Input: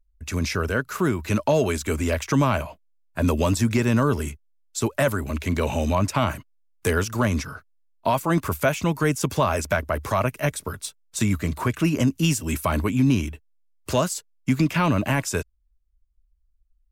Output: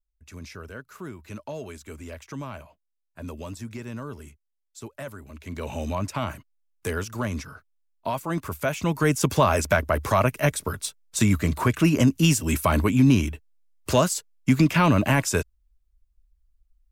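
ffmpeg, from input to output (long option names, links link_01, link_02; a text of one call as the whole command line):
ffmpeg -i in.wav -af "volume=2dB,afade=type=in:start_time=5.37:duration=0.44:silence=0.354813,afade=type=in:start_time=8.58:duration=0.66:silence=0.375837" out.wav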